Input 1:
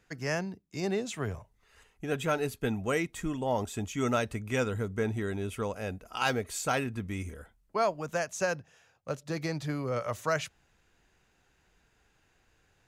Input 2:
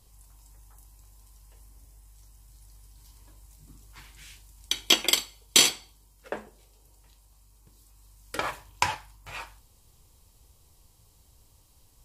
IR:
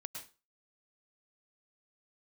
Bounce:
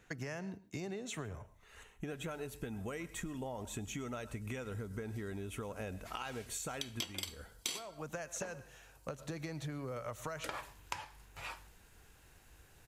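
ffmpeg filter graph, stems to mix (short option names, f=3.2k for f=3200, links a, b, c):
-filter_complex "[0:a]bandreject=f=4.9k:w=6,acompressor=threshold=-39dB:ratio=6,volume=2dB,asplit=2[a][b];[b]volume=-9dB[c];[1:a]adelay=2100,volume=-5.5dB[d];[2:a]atrim=start_sample=2205[e];[c][e]afir=irnorm=-1:irlink=0[f];[a][d][f]amix=inputs=3:normalize=0,acompressor=threshold=-38dB:ratio=6"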